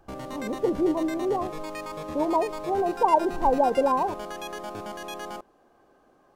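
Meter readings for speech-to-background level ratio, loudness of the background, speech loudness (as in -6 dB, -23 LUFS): 10.5 dB, -36.0 LUFS, -25.5 LUFS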